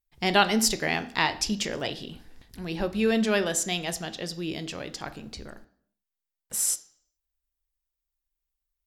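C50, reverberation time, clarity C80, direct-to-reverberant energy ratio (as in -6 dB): 16.0 dB, 0.60 s, 19.0 dB, 10.5 dB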